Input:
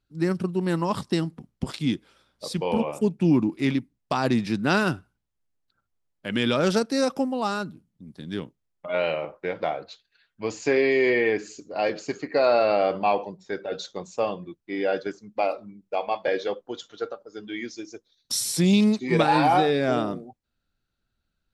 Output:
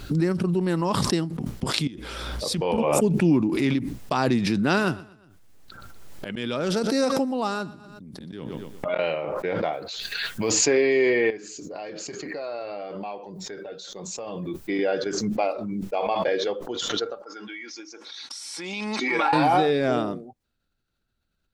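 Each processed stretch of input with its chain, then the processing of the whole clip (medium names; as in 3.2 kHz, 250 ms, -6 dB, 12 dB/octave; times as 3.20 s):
1.87–2.78 s: peaking EQ 64 Hz +14.5 dB 0.43 oct + compression 3:1, threshold -43 dBFS
4.61–8.99 s: slow attack 653 ms + feedback delay 121 ms, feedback 33%, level -19 dB
9.73–10.65 s: short-mantissa float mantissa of 6-bit + treble shelf 4.8 kHz +9 dB
11.30–14.79 s: treble shelf 9.6 kHz +11 dB + compression 2:1, threshold -33 dBFS + flange 1.1 Hz, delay 5.1 ms, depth 1.9 ms, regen -62%
17.22–19.33 s: cabinet simulation 490–8000 Hz, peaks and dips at 560 Hz -8 dB, 920 Hz +7 dB, 1.4 kHz +6 dB, 2.2 kHz +5 dB, 3.9 kHz -5 dB, 7.1 kHz -7 dB + compression 5:1, threshold -35 dBFS + comb 3.6 ms, depth 47%
whole clip: peaking EQ 400 Hz +2 dB; swell ahead of each attack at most 21 dB/s; trim -1 dB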